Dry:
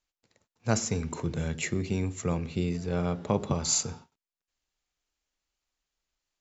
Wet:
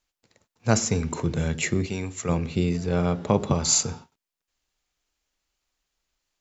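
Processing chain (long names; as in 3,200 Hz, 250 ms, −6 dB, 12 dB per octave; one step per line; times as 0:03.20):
0:01.86–0:02.29: low-shelf EQ 500 Hz −8.5 dB
level +5.5 dB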